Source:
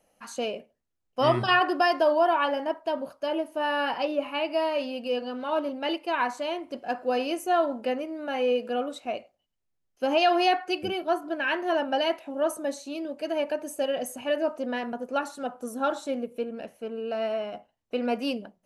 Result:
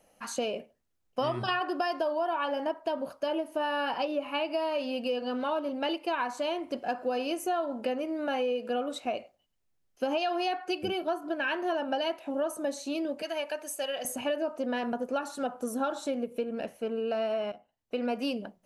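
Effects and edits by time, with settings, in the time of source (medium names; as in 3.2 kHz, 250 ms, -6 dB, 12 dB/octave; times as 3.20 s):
13.22–14.05 s: high-pass 1.5 kHz 6 dB/octave
17.52–18.33 s: fade in, from -15.5 dB
whole clip: dynamic bell 2 kHz, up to -6 dB, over -50 dBFS, Q 5.9; compression 6:1, threshold -31 dBFS; trim +3.5 dB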